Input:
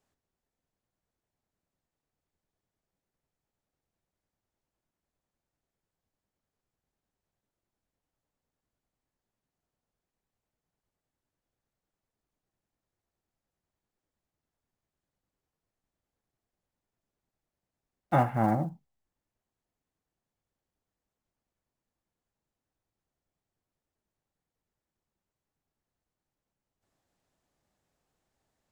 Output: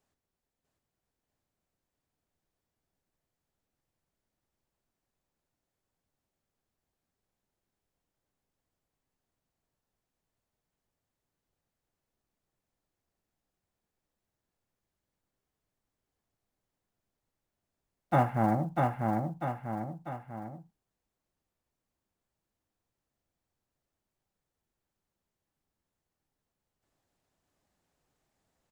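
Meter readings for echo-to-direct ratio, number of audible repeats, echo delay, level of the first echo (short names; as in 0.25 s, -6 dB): -2.0 dB, 3, 0.645 s, -3.0 dB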